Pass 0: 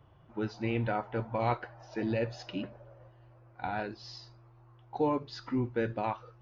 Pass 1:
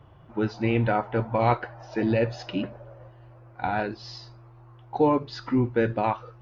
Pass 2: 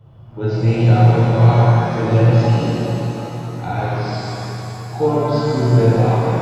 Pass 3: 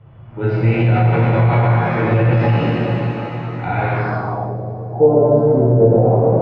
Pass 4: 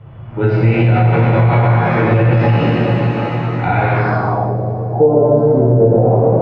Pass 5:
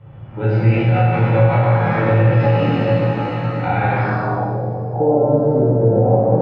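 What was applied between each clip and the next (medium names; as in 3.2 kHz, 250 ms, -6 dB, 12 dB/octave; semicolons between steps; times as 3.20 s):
treble shelf 5.4 kHz -6.5 dB; trim +8 dB
ten-band graphic EQ 125 Hz +8 dB, 250 Hz -7 dB, 1 kHz -5 dB, 2 kHz -8 dB; pitch-shifted reverb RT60 3.5 s, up +7 st, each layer -8 dB, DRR -9.5 dB
peak limiter -8.5 dBFS, peak gain reduction 7 dB; low-pass sweep 2.2 kHz -> 570 Hz, 3.97–4.58 s; trim +1.5 dB
compression 2:1, threshold -19 dBFS, peak gain reduction 7 dB; trim +7 dB
reverberation RT60 1.0 s, pre-delay 3 ms, DRR 0 dB; trim -6 dB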